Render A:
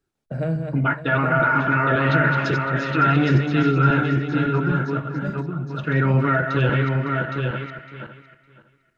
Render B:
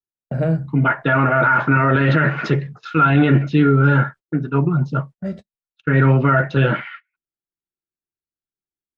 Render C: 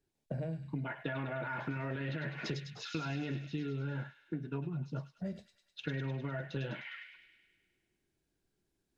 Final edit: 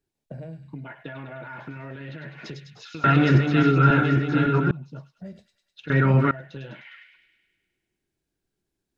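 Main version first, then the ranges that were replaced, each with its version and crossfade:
C
3.04–4.71 from A
5.9–6.31 from A
not used: B

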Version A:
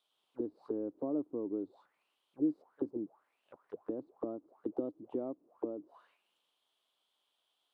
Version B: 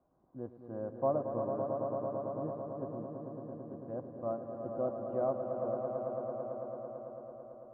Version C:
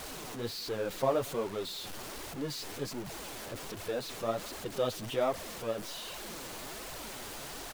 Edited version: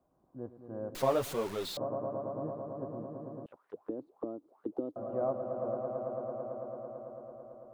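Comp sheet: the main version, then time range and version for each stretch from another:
B
0.95–1.77 from C
3.46–4.96 from A

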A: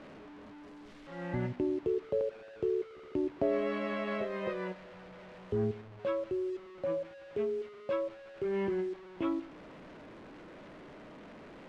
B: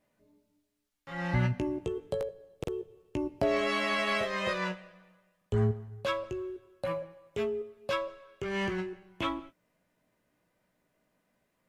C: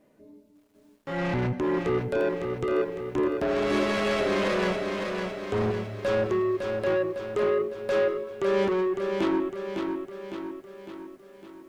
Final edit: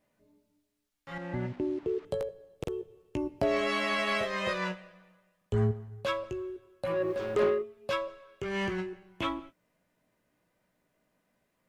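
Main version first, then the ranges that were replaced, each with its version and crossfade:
B
1.18–2.05 from A
6.99–7.54 from C, crossfade 0.24 s

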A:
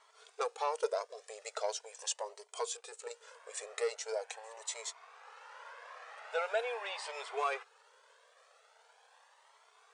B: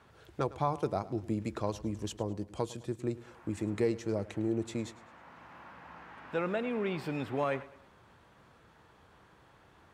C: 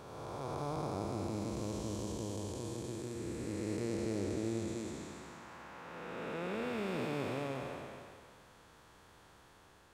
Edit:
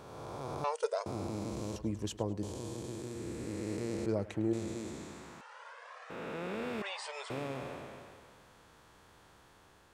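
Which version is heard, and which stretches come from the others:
C
0.64–1.06 from A
1.76–2.43 from B
4.06–4.53 from B
5.41–6.1 from A
6.82–7.3 from A

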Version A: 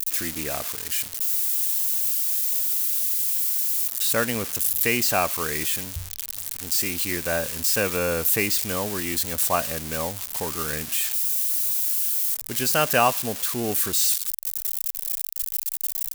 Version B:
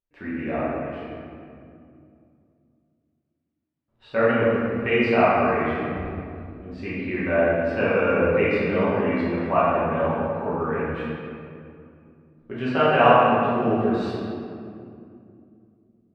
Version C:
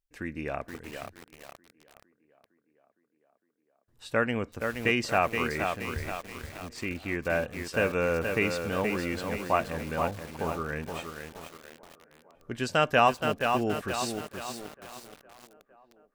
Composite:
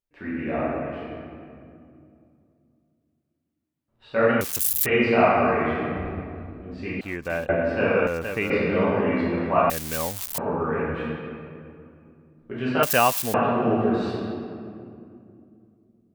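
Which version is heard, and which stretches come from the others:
B
4.41–4.86 from A
7.01–7.49 from C
8.07–8.5 from C
9.7–10.38 from A
12.83–13.34 from A

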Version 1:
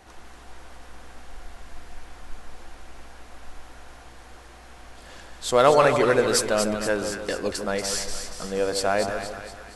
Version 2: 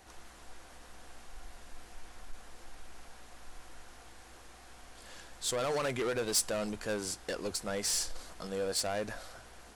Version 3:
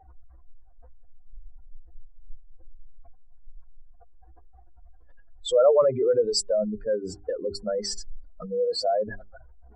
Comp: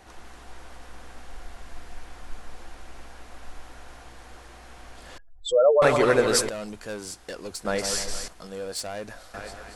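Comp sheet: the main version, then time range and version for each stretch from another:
1
5.18–5.82 from 3
6.49–7.65 from 2
8.28–9.34 from 2

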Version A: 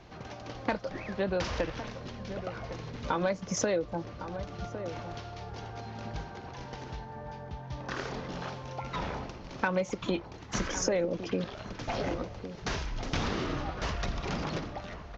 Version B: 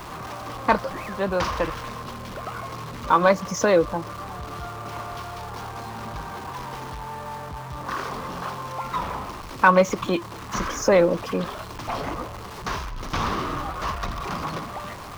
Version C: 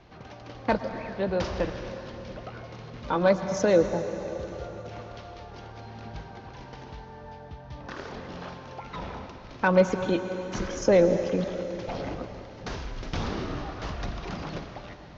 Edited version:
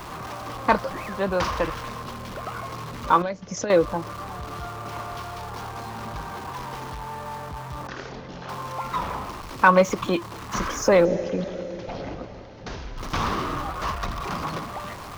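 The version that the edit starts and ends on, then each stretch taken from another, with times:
B
3.22–3.7 from A
7.87–8.49 from A
11.05–12.97 from C

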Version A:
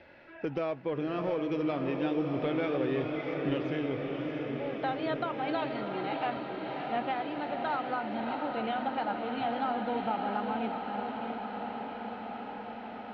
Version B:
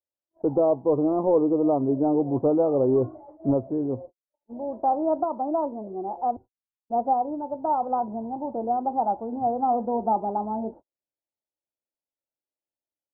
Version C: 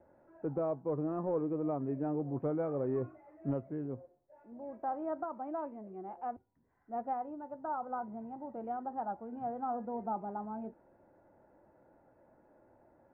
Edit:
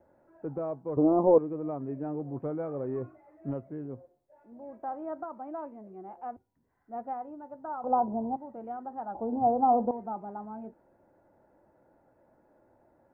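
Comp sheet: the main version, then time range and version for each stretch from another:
C
0.97–1.38 from B
7.84–8.36 from B
9.15–9.91 from B
not used: A

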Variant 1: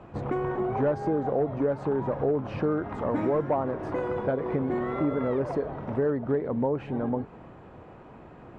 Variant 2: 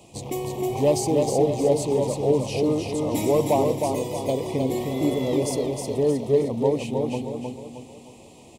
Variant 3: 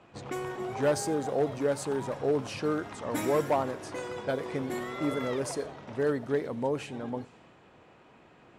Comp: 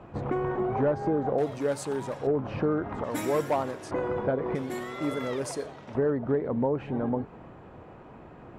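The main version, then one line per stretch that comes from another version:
1
1.38–2.27 from 3
3.04–3.91 from 3
4.55–5.95 from 3
not used: 2

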